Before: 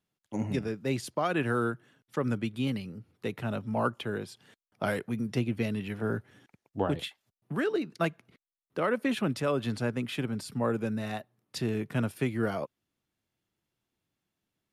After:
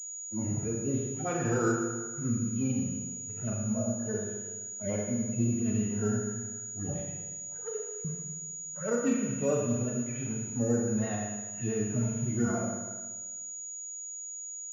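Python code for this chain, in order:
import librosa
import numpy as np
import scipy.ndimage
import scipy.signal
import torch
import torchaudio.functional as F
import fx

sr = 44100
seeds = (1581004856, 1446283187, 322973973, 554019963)

y = fx.hpss_only(x, sr, part='harmonic')
y = fx.cheby_ripple_highpass(y, sr, hz=440.0, ripple_db=6, at=(6.99, 8.05))
y = fx.vibrato(y, sr, rate_hz=5.9, depth_cents=73.0)
y = fx.rev_schroeder(y, sr, rt60_s=1.4, comb_ms=26, drr_db=-1.0)
y = fx.pwm(y, sr, carrier_hz=6800.0)
y = y * librosa.db_to_amplitude(-1.0)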